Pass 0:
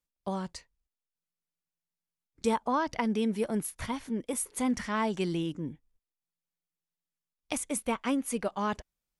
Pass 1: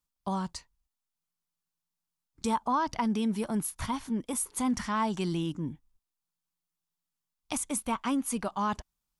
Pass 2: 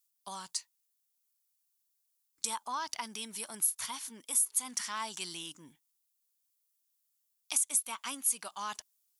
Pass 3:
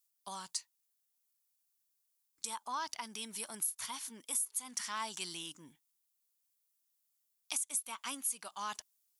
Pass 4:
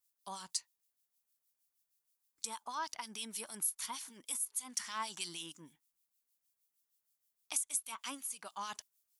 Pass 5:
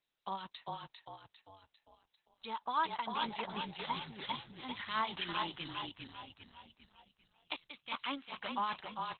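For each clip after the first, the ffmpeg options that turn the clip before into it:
-filter_complex "[0:a]equalizer=f=500:t=o:w=1:g=-9,equalizer=f=1k:t=o:w=1:g=5,equalizer=f=2k:t=o:w=1:g=-6,asplit=2[a][b];[b]alimiter=level_in=3dB:limit=-24dB:level=0:latency=1:release=32,volume=-3dB,volume=1dB[c];[a][c]amix=inputs=2:normalize=0,volume=-3dB"
-af "aderivative,acompressor=threshold=-36dB:ratio=2.5,volume=8.5dB"
-af "alimiter=limit=-20.5dB:level=0:latency=1:release=358,volume=-1.5dB"
-filter_complex "[0:a]acrossover=split=2100[a][b];[a]aeval=exprs='val(0)*(1-0.7/2+0.7/2*cos(2*PI*6.4*n/s))':c=same[c];[b]aeval=exprs='val(0)*(1-0.7/2-0.7/2*cos(2*PI*6.4*n/s))':c=same[d];[c][d]amix=inputs=2:normalize=0,volume=2dB"
-filter_complex "[0:a]asplit=7[a][b][c][d][e][f][g];[b]adelay=399,afreqshift=-32,volume=-3dB[h];[c]adelay=798,afreqshift=-64,volume=-9.9dB[i];[d]adelay=1197,afreqshift=-96,volume=-16.9dB[j];[e]adelay=1596,afreqshift=-128,volume=-23.8dB[k];[f]adelay=1995,afreqshift=-160,volume=-30.7dB[l];[g]adelay=2394,afreqshift=-192,volume=-37.7dB[m];[a][h][i][j][k][l][m]amix=inputs=7:normalize=0,volume=7dB" -ar 48000 -c:a libopus -b:a 8k

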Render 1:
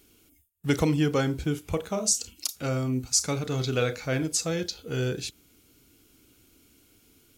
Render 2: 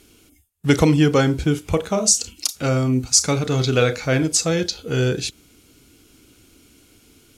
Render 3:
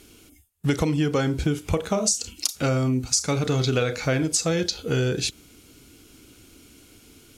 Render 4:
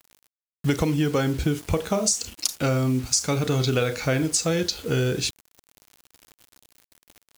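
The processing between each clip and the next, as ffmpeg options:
-af "lowpass=11k,volume=8.5dB"
-af "acompressor=threshold=-21dB:ratio=6,volume=1.5dB"
-af "acrusher=bits=6:mix=0:aa=0.000001"

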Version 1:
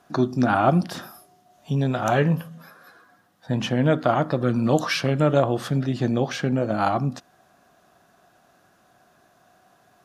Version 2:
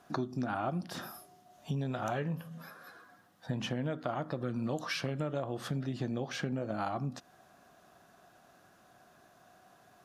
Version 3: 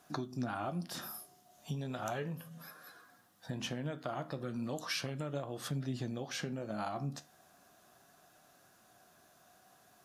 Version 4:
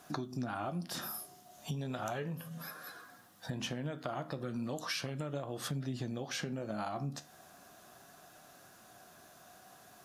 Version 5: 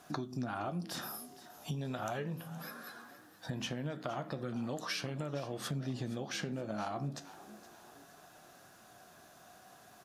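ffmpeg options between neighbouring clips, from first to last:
-af "acompressor=threshold=-30dB:ratio=5,volume=-2.5dB"
-af "highshelf=f=4.5k:g=11,flanger=delay=6.5:depth=8:regen=72:speed=0.36:shape=sinusoidal"
-af "acompressor=threshold=-46dB:ratio=2,volume=6.5dB"
-filter_complex "[0:a]highshelf=f=8.8k:g=-4.5,asplit=4[a][b][c][d];[b]adelay=468,afreqshift=71,volume=-16.5dB[e];[c]adelay=936,afreqshift=142,volume=-24.7dB[f];[d]adelay=1404,afreqshift=213,volume=-32.9dB[g];[a][e][f][g]amix=inputs=4:normalize=0"

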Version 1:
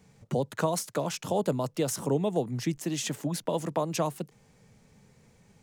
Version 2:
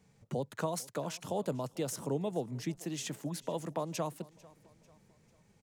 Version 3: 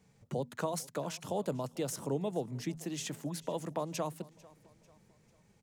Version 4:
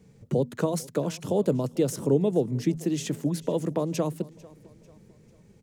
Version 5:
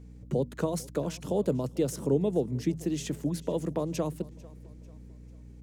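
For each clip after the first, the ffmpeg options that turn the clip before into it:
-af "aecho=1:1:445|890|1335:0.075|0.033|0.0145,volume=-7dB"
-af "bandreject=f=80.36:t=h:w=4,bandreject=f=160.72:t=h:w=4,bandreject=f=241.08:t=h:w=4"
-af "lowshelf=f=580:t=q:w=1.5:g=7,volume=4dB"
-af "aeval=exprs='val(0)+0.00708*(sin(2*PI*60*n/s)+sin(2*PI*2*60*n/s)/2+sin(2*PI*3*60*n/s)/3+sin(2*PI*4*60*n/s)/4+sin(2*PI*5*60*n/s)/5)':c=same,volume=-3.5dB"

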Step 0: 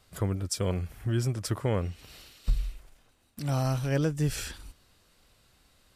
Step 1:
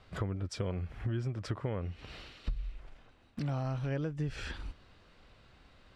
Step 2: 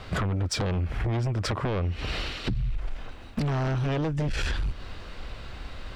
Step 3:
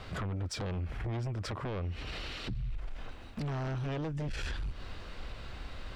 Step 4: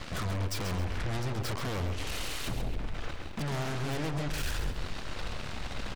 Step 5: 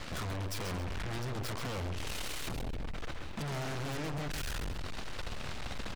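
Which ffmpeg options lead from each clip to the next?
-af "lowpass=3k,acompressor=threshold=-38dB:ratio=5,volume=5dB"
-af "asubboost=boost=2:cutoff=82,aeval=exprs='0.1*sin(PI/2*3.98*val(0)/0.1)':c=same,acompressor=threshold=-27dB:ratio=6,volume=2dB"
-af "alimiter=level_in=3.5dB:limit=-24dB:level=0:latency=1:release=64,volume=-3.5dB,volume=-4dB"
-af "aeval=exprs='0.0282*(cos(1*acos(clip(val(0)/0.0282,-1,1)))-cos(1*PI/2))+0.00562*(cos(7*acos(clip(val(0)/0.0282,-1,1)))-cos(7*PI/2))+0.00794*(cos(8*acos(clip(val(0)/0.0282,-1,1)))-cos(8*PI/2))':c=same,aecho=1:1:134|268|402|536:0.398|0.119|0.0358|0.0107,volume=1.5dB"
-af "volume=34dB,asoftclip=hard,volume=-34dB"

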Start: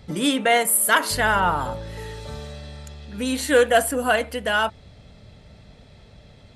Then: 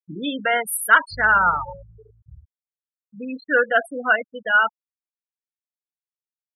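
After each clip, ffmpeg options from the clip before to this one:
-af "afftfilt=real='re*gte(hypot(re,im),0.158)':imag='im*gte(hypot(re,im),0.158)':win_size=1024:overlap=0.75,equalizer=f=1.4k:w=1.9:g=13.5,volume=-5.5dB"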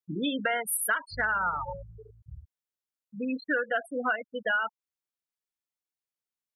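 -af "acompressor=threshold=-25dB:ratio=10"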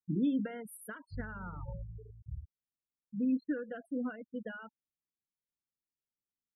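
-af "firequalizer=gain_entry='entry(240,0);entry(700,-21);entry(2600,-24)':delay=0.05:min_phase=1,volume=2.5dB"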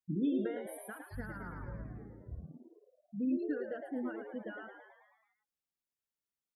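-filter_complex "[0:a]asplit=8[a][b][c][d][e][f][g][h];[b]adelay=109,afreqshift=88,volume=-7dB[i];[c]adelay=218,afreqshift=176,volume=-11.7dB[j];[d]adelay=327,afreqshift=264,volume=-16.5dB[k];[e]adelay=436,afreqshift=352,volume=-21.2dB[l];[f]adelay=545,afreqshift=440,volume=-25.9dB[m];[g]adelay=654,afreqshift=528,volume=-30.7dB[n];[h]adelay=763,afreqshift=616,volume=-35.4dB[o];[a][i][j][k][l][m][n][o]amix=inputs=8:normalize=0,volume=-2.5dB"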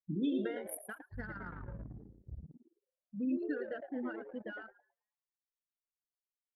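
-af "anlmdn=0.0631,crystalizer=i=6.5:c=0,volume=-1.5dB"

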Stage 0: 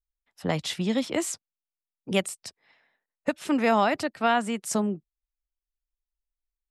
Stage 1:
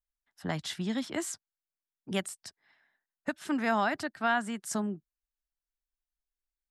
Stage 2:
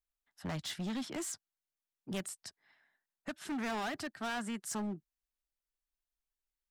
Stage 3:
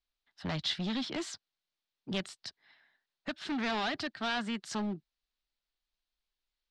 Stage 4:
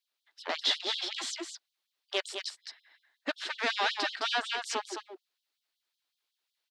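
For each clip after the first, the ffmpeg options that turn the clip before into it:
-af "equalizer=f=500:t=o:w=0.33:g=-10,equalizer=f=1.6k:t=o:w=0.33:g=7,equalizer=f=2.5k:t=o:w=0.33:g=-5,volume=-5.5dB"
-af "volume=32.5dB,asoftclip=hard,volume=-32.5dB,volume=-2dB"
-af "lowpass=f=4.1k:t=q:w=2.3,volume=3dB"
-af "aecho=1:1:213:0.473,afftfilt=real='re*gte(b*sr/1024,250*pow(3100/250,0.5+0.5*sin(2*PI*5.4*pts/sr)))':imag='im*gte(b*sr/1024,250*pow(3100/250,0.5+0.5*sin(2*PI*5.4*pts/sr)))':win_size=1024:overlap=0.75,volume=5.5dB"

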